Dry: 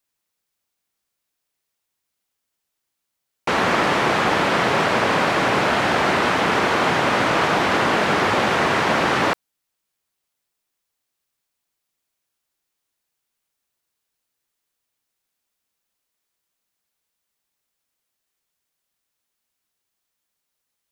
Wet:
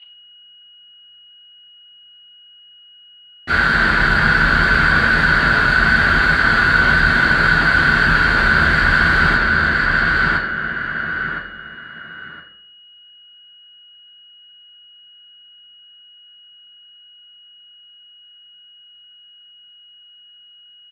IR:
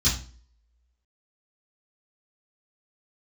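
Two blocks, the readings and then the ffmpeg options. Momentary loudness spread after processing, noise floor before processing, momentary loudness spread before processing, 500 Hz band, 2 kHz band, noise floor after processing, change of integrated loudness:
11 LU, −80 dBFS, 1 LU, −6.5 dB, +11.0 dB, −46 dBFS, +4.5 dB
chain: -filter_complex "[0:a]firequalizer=gain_entry='entry(260,0);entry(890,-21);entry(1500,11);entry(2300,-14)':delay=0.05:min_phase=1,aecho=1:1:1014|2028|3042:0.422|0.0928|0.0204,aeval=exprs='val(0)+0.00282*sin(2*PI*2900*n/s)':channel_layout=same,asplit=2[link_01][link_02];[link_02]highpass=frequency=720:poles=1,volume=30dB,asoftclip=type=tanh:threshold=-3dB[link_03];[link_01][link_03]amix=inputs=2:normalize=0,lowpass=frequency=1100:poles=1,volume=-6dB[link_04];[1:a]atrim=start_sample=2205,asetrate=27783,aresample=44100[link_05];[link_04][link_05]afir=irnorm=-1:irlink=0,volume=-18dB"

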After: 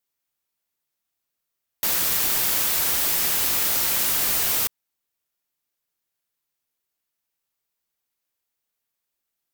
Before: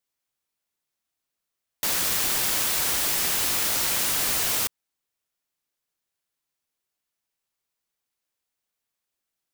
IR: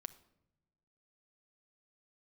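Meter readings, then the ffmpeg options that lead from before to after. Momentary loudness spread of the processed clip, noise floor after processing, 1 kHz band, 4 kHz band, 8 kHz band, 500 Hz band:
4 LU, −82 dBFS, 0.0 dB, 0.0 dB, +0.5 dB, 0.0 dB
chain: -af "equalizer=frequency=15000:width=1.7:gain=8"

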